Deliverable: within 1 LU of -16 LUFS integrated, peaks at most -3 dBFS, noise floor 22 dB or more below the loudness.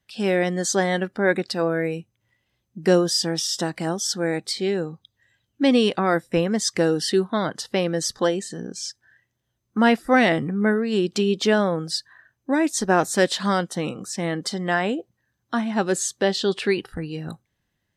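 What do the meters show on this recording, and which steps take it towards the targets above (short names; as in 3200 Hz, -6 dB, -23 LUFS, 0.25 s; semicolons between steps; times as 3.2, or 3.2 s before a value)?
loudness -23.0 LUFS; peak -5.5 dBFS; loudness target -16.0 LUFS
-> gain +7 dB; limiter -3 dBFS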